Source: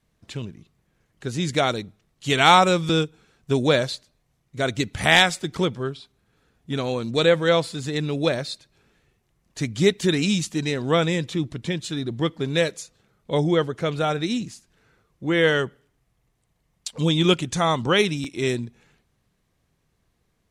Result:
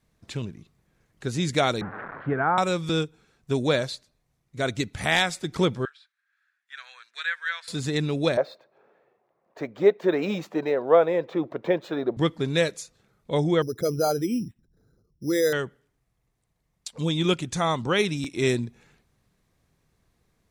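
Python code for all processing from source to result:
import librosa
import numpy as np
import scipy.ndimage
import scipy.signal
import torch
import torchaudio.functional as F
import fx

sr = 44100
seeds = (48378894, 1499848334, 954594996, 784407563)

y = fx.chain(x, sr, fx.crossing_spikes(level_db=-14.0),
    fx.ellip_lowpass(hz=1600.0, order=4, stop_db=80),
    fx.band_squash(depth_pct=40), at=(1.81, 2.58))
y = fx.chain(y, sr, fx.ladder_highpass(hz=1500.0, resonance_pct=70),
    fx.high_shelf(hz=6600.0, db=-8.5), at=(5.85, 7.68))
y = fx.chain(y, sr, fx.highpass(hz=280.0, slope=12),
    fx.resample_bad(factor=2, down='none', up='hold'),
    fx.curve_eq(hz=(280.0, 560.0, 1100.0, 8400.0), db=(0, 14, 7, -23)), at=(8.37, 12.17))
y = fx.chain(y, sr, fx.envelope_sharpen(power=2.0),
    fx.env_lowpass(base_hz=620.0, full_db=-20.5),
    fx.resample_bad(factor=8, down='filtered', up='hold'), at=(13.62, 15.53))
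y = fx.peak_eq(y, sr, hz=3000.0, db=-4.0, octaves=0.21)
y = fx.rider(y, sr, range_db=4, speed_s=0.5)
y = y * 10.0 ** (-3.0 / 20.0)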